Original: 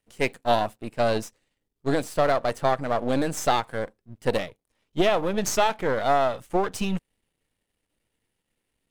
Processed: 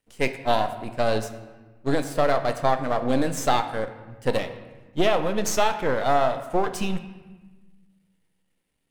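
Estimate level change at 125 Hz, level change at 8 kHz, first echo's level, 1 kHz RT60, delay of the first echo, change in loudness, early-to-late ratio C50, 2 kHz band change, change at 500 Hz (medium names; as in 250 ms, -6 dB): +1.0 dB, +0.5 dB, no echo, 1.2 s, no echo, +0.5 dB, 11.0 dB, +0.5 dB, +0.5 dB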